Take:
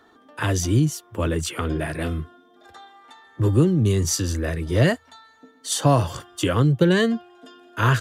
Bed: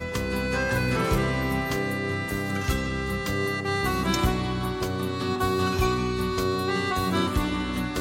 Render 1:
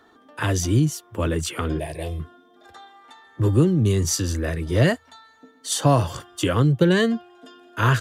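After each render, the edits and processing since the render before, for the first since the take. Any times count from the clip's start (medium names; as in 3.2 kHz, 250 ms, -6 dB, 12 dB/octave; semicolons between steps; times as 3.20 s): 1.79–2.20 s: static phaser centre 570 Hz, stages 4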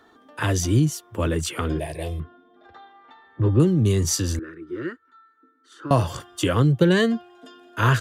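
2.20–3.60 s: distance through air 280 m; 4.39–5.91 s: two resonant band-passes 690 Hz, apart 2 oct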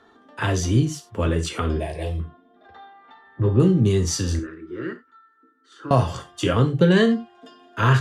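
distance through air 52 m; gated-style reverb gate 120 ms falling, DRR 5.5 dB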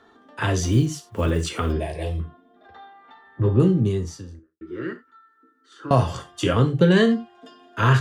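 0.63–1.73 s: block-companded coder 7-bit; 3.45–4.61 s: studio fade out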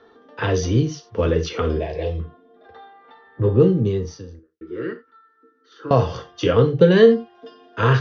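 steep low-pass 6.2 kHz 96 dB/octave; peaking EQ 470 Hz +13.5 dB 0.25 oct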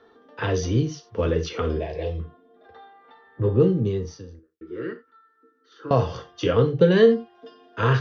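trim -3.5 dB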